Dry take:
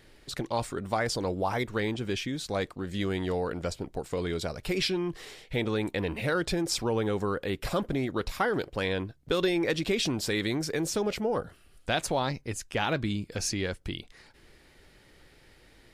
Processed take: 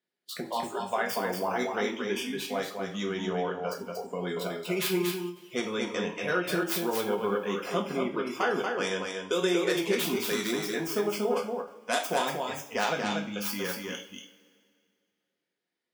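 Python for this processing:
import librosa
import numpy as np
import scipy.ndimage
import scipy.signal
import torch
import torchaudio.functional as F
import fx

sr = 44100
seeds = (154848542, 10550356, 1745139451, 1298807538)

y = fx.tracing_dist(x, sr, depth_ms=0.25)
y = scipy.signal.sosfilt(scipy.signal.butter(4, 180.0, 'highpass', fs=sr, output='sos'), y)
y = fx.noise_reduce_blind(y, sr, reduce_db=29)
y = y + 10.0 ** (-4.5 / 20.0) * np.pad(y, (int(235 * sr / 1000.0), 0))[:len(y)]
y = fx.rev_double_slope(y, sr, seeds[0], early_s=0.37, late_s=2.2, knee_db=-21, drr_db=0.5)
y = fx.end_taper(y, sr, db_per_s=190.0)
y = y * librosa.db_to_amplitude(-2.5)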